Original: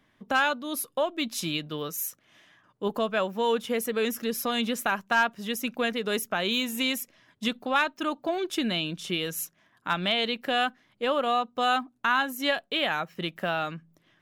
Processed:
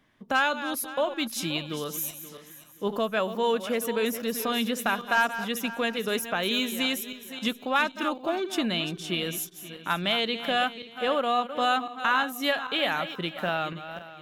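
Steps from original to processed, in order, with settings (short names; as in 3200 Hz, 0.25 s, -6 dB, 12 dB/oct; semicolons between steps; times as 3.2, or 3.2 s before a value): regenerating reverse delay 0.264 s, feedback 51%, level -11 dB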